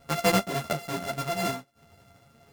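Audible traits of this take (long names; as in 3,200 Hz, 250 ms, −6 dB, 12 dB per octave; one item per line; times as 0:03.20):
a buzz of ramps at a fixed pitch in blocks of 64 samples
tremolo triangle 1.6 Hz, depth 35%
a shimmering, thickened sound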